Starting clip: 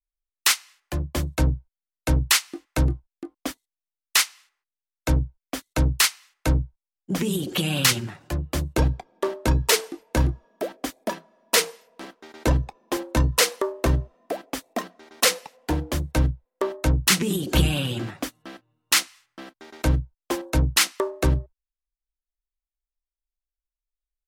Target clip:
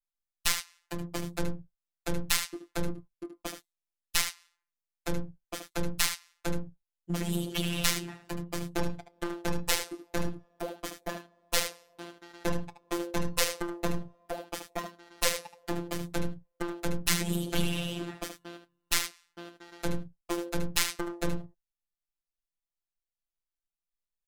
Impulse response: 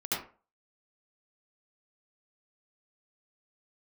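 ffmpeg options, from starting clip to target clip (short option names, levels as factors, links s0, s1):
-af "aecho=1:1:75:0.316,aeval=exprs='clip(val(0),-1,0.0355)':c=same,afftfilt=real='hypot(re,im)*cos(PI*b)':imag='0':win_size=1024:overlap=0.75,volume=0.794"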